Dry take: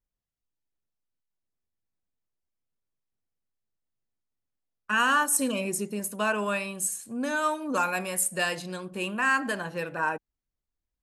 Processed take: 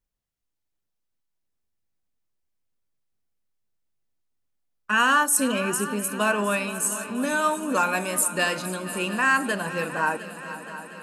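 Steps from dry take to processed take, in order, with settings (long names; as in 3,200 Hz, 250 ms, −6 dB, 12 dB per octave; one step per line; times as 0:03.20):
echo machine with several playback heads 236 ms, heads second and third, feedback 62%, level −15 dB
level +3.5 dB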